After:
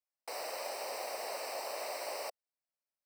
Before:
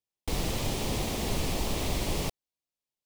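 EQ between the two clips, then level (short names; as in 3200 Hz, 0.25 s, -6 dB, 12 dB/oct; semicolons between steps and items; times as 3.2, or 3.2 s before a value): running mean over 13 samples; resonant high-pass 580 Hz, resonance Q 3.4; differentiator; +11.5 dB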